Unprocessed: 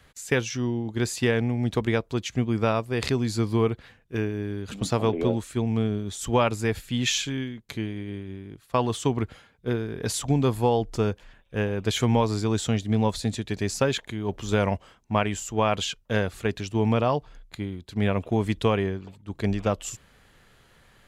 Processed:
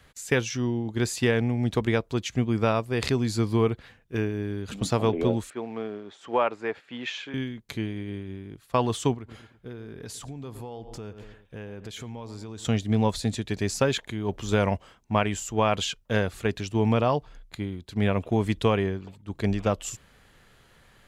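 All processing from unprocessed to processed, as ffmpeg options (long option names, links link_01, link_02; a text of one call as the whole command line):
ffmpeg -i in.wav -filter_complex "[0:a]asettb=1/sr,asplit=3[link_01][link_02][link_03];[link_01]atrim=end=5.504[link_04];[link_02]atrim=start=5.5:end=7.34,asetpts=PTS-STARTPTS,afade=type=in:duration=0.004:curve=qsin,afade=type=out:start_time=1.836:duration=0.004:curve=qsin,acrusher=bits=7:mode=log:mix=0:aa=0.000001,highpass=420,lowpass=2000[link_05];[link_03]atrim=start=7.336[link_06];[link_04][link_05]acrossfade=duration=0.004:curve1=hsin:curve2=qsin[link_07];[link_07][link_06]acrossfade=duration=0.004:curve1=qsin:curve2=hsin,asettb=1/sr,asplit=3[link_08][link_09][link_10];[link_08]atrim=end=9.144[link_11];[link_09]atrim=start=9.14:end=12.65,asetpts=PTS-STARTPTS,afade=type=in:duration=0.004:curve=qsin,afade=type=out:start_time=3.506:duration=0.004:curve=qsin,asplit=2[link_12][link_13];[link_13]adelay=112,lowpass=frequency=2700:poles=1,volume=-18dB,asplit=2[link_14][link_15];[link_15]adelay=112,lowpass=frequency=2700:poles=1,volume=0.41,asplit=2[link_16][link_17];[link_17]adelay=112,lowpass=frequency=2700:poles=1,volume=0.41[link_18];[link_12][link_14][link_16][link_18]amix=inputs=4:normalize=0,atrim=end_sample=154791,acompressor=threshold=-37dB:ratio=5:attack=3.2:release=140:knee=1:detection=peak[link_19];[link_10]atrim=start=12.646[link_20];[link_11][link_19]acrossfade=duration=0.004:curve1=hsin:curve2=qsin[link_21];[link_21][link_20]acrossfade=duration=0.004:curve1=qsin:curve2=hsin" out.wav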